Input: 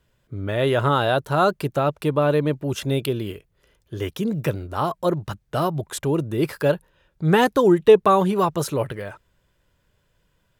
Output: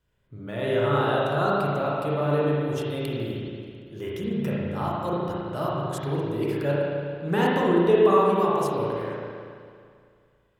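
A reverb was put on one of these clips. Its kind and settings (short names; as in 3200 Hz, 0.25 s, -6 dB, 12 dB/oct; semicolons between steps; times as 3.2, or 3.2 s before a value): spring tank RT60 2.2 s, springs 35/55 ms, chirp 50 ms, DRR -6 dB; gain -10.5 dB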